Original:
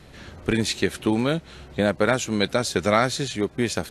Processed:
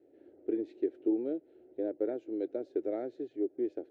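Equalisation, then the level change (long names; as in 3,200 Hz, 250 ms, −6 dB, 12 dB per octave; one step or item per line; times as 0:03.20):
four-pole ladder band-pass 360 Hz, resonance 60%
phaser with its sweep stopped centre 450 Hz, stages 4
0.0 dB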